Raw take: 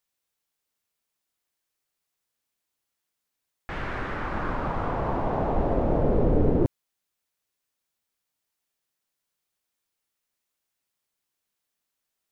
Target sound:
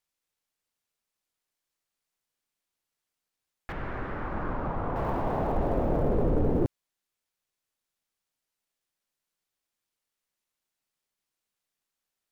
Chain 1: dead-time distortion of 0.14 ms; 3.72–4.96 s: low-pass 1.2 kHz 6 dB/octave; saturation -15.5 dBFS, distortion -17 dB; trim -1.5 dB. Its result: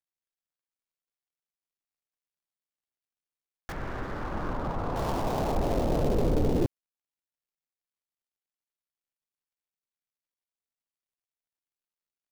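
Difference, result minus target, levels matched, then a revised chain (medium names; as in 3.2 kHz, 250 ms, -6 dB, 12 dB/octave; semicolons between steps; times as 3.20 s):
dead-time distortion: distortion +22 dB
dead-time distortion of 0.032 ms; 3.72–4.96 s: low-pass 1.2 kHz 6 dB/octave; saturation -15.5 dBFS, distortion -17 dB; trim -1.5 dB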